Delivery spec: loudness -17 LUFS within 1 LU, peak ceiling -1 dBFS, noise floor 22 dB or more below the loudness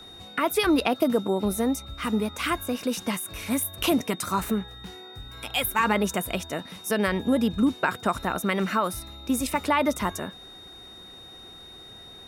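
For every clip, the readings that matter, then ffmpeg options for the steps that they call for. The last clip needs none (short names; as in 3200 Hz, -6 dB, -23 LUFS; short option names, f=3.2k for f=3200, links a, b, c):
steady tone 3700 Hz; tone level -44 dBFS; loudness -26.0 LUFS; peak -9.5 dBFS; loudness target -17.0 LUFS
-> -af "bandreject=f=3.7k:w=30"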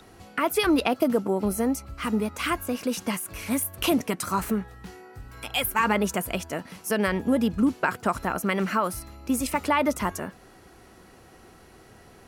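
steady tone none; loudness -26.5 LUFS; peak -9.5 dBFS; loudness target -17.0 LUFS
-> -af "volume=9.5dB,alimiter=limit=-1dB:level=0:latency=1"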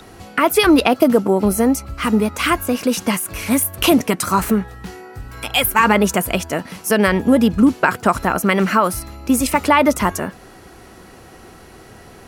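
loudness -17.0 LUFS; peak -1.0 dBFS; noise floor -43 dBFS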